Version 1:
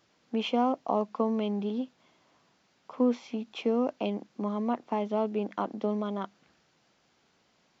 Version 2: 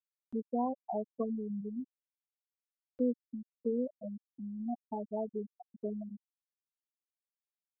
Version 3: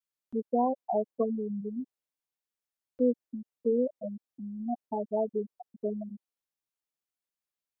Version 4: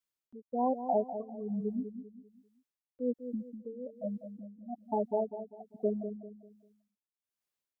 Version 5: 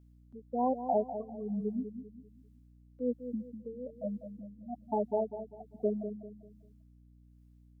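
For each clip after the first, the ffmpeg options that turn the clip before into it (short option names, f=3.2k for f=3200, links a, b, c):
-af "afftfilt=real='re*gte(hypot(re,im),0.224)':imag='im*gte(hypot(re,im),0.224)':win_size=1024:overlap=0.75,acompressor=mode=upward:threshold=-40dB:ratio=2.5,volume=-5.5dB"
-af "adynamicequalizer=threshold=0.00501:dfrequency=540:dqfactor=0.79:tfrequency=540:tqfactor=0.79:attack=5:release=100:ratio=0.375:range=3.5:mode=boostabove:tftype=bell,volume=1.5dB"
-filter_complex "[0:a]tremolo=f=1.2:d=0.92,asplit=2[a][b];[b]adelay=197,lowpass=f=1k:p=1,volume=-9dB,asplit=2[c][d];[d]adelay=197,lowpass=f=1k:p=1,volume=0.38,asplit=2[e][f];[f]adelay=197,lowpass=f=1k:p=1,volume=0.38,asplit=2[g][h];[h]adelay=197,lowpass=f=1k:p=1,volume=0.38[i];[c][e][g][i]amix=inputs=4:normalize=0[j];[a][j]amix=inputs=2:normalize=0,volume=2dB"
-af "aeval=exprs='val(0)+0.00126*(sin(2*PI*60*n/s)+sin(2*PI*2*60*n/s)/2+sin(2*PI*3*60*n/s)/3+sin(2*PI*4*60*n/s)/4+sin(2*PI*5*60*n/s)/5)':c=same"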